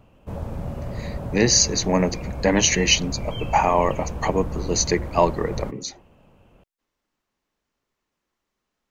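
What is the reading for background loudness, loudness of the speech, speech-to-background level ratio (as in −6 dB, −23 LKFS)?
−32.5 LKFS, −21.0 LKFS, 11.5 dB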